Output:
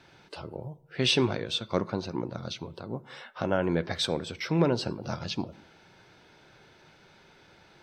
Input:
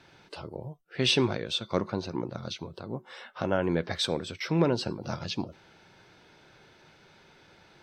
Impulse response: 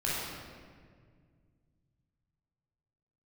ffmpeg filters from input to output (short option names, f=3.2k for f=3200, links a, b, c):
-filter_complex "[0:a]asplit=2[a][b];[1:a]atrim=start_sample=2205,afade=t=out:st=0.28:d=0.01,atrim=end_sample=12789,lowpass=2.1k[c];[b][c]afir=irnorm=-1:irlink=0,volume=-25.5dB[d];[a][d]amix=inputs=2:normalize=0"